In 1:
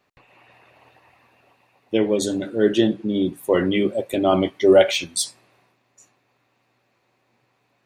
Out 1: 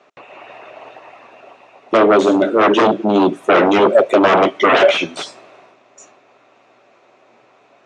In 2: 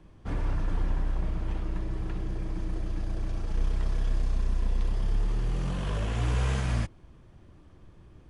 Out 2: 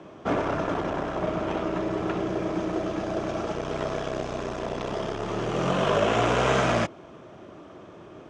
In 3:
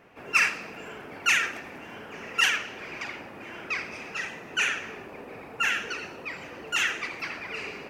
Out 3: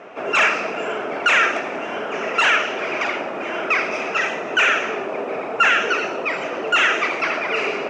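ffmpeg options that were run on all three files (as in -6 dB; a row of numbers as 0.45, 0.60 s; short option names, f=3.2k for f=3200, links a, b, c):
-filter_complex "[0:a]aeval=exprs='0.891*sin(PI/2*7.94*val(0)/0.891)':c=same,acrossover=split=3100[a][b];[b]acompressor=threshold=-21dB:ratio=4:attack=1:release=60[c];[a][c]amix=inputs=2:normalize=0,highpass=240,equalizer=f=400:t=q:w=4:g=4,equalizer=f=640:t=q:w=4:g=9,equalizer=f=1.3k:t=q:w=4:g=5,equalizer=f=1.8k:t=q:w=4:g=-3,equalizer=f=4.5k:t=q:w=4:g=-7,lowpass=f=6.8k:w=0.5412,lowpass=f=6.8k:w=1.3066,volume=-8.5dB"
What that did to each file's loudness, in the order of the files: +7.0, +5.0, +8.0 LU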